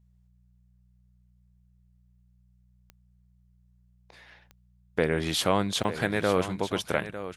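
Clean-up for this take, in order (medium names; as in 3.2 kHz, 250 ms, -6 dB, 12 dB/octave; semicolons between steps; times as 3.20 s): de-click; de-hum 60.6 Hz, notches 3; inverse comb 902 ms -12 dB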